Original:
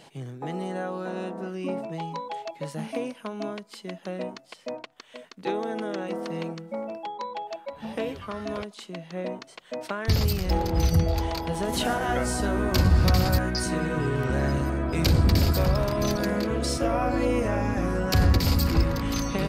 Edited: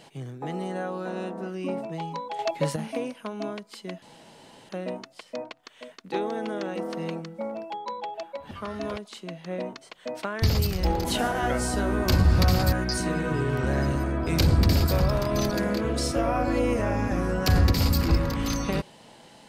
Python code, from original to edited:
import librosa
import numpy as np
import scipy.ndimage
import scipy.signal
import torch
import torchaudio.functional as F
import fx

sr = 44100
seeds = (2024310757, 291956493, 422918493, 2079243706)

y = fx.edit(x, sr, fx.clip_gain(start_s=2.39, length_s=0.37, db=8.5),
    fx.insert_room_tone(at_s=4.02, length_s=0.67),
    fx.cut(start_s=7.84, length_s=0.33),
    fx.cut(start_s=10.71, length_s=1.0), tone=tone)